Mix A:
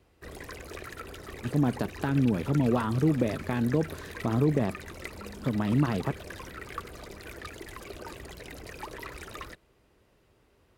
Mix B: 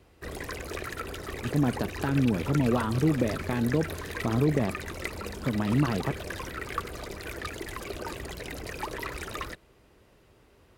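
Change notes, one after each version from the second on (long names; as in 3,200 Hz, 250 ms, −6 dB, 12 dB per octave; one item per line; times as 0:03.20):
background +5.5 dB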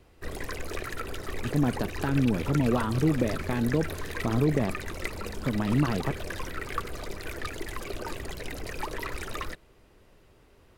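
master: remove high-pass filter 43 Hz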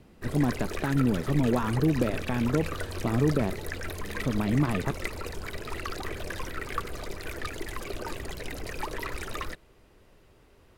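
speech: entry −1.20 s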